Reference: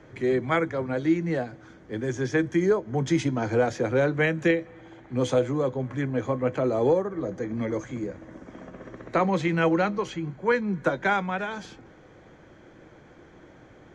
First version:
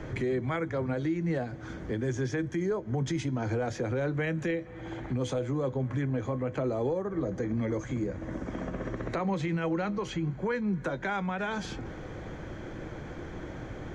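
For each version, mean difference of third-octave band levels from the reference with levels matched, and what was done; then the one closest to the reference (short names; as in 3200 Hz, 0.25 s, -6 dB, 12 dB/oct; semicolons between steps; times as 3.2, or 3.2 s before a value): 5.0 dB: low shelf 110 Hz +11 dB; compressor 2.5:1, threshold -41 dBFS, peak gain reduction 16.5 dB; limiter -30.5 dBFS, peak gain reduction 6 dB; gain +8.5 dB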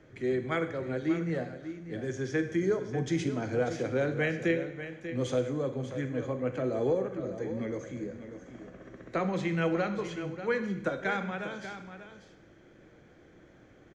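3.0 dB: bell 940 Hz -7.5 dB 0.55 oct; on a send: echo 0.59 s -11 dB; on the sum: Schroeder reverb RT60 0.83 s, combs from 32 ms, DRR 9 dB; gain -6 dB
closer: second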